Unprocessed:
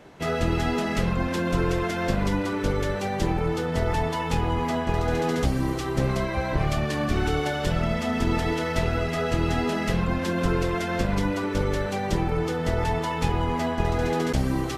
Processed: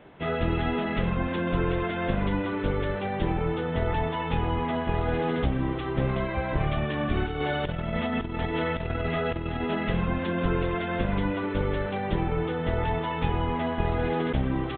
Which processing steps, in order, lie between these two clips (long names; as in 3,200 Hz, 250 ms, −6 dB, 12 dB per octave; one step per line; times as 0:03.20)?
downsampling to 8,000 Hz
0:07.24–0:09.75: compressor whose output falls as the input rises −26 dBFS, ratio −0.5
level −2 dB